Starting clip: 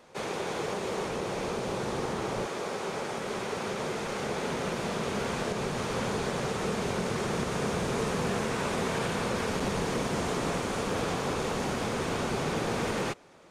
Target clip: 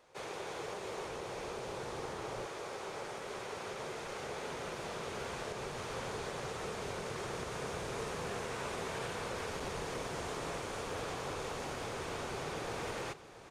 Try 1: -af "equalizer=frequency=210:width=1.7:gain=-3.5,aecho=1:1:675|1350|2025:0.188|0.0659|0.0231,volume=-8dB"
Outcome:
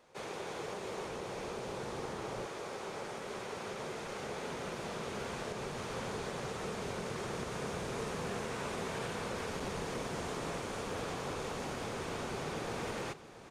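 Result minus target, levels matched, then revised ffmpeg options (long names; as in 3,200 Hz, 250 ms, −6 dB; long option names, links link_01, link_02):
250 Hz band +3.0 dB
-af "equalizer=frequency=210:width=1.7:gain=-10,aecho=1:1:675|1350|2025:0.188|0.0659|0.0231,volume=-8dB"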